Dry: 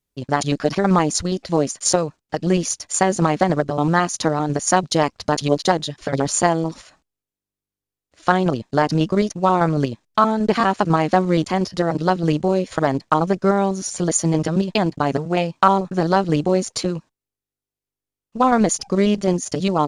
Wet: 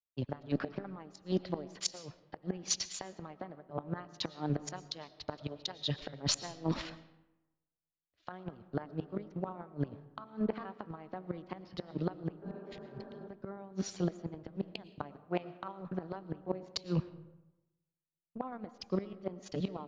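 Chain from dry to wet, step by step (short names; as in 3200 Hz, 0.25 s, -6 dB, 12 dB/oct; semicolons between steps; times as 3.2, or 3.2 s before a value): in parallel at -0.5 dB: pump 126 bpm, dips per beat 1, -23 dB, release 97 ms; on the sum: flipped gate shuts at -3 dBFS, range -29 dB; LPF 4300 Hz 24 dB/oct; reverse; compressor 8:1, threshold -27 dBFS, peak gain reduction 17.5 dB; reverse; limiter -20 dBFS, peak gain reduction 9.5 dB; spectral repair 12.45–13.25, 210–1800 Hz after; reverb RT60 1.9 s, pre-delay 75 ms, DRR 12.5 dB; three-band expander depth 70%; gain -3.5 dB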